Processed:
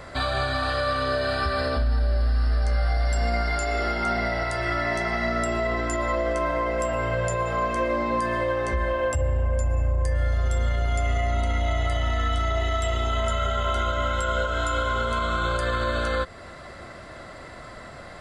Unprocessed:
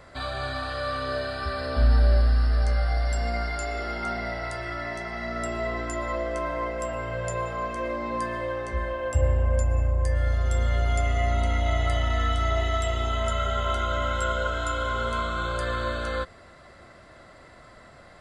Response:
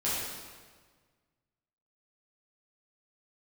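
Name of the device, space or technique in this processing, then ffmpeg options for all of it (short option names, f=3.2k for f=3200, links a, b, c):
stacked limiters: -af "alimiter=limit=-17dB:level=0:latency=1:release=453,alimiter=limit=-20dB:level=0:latency=1,alimiter=level_in=0.5dB:limit=-24dB:level=0:latency=1:release=241,volume=-0.5dB,volume=8.5dB"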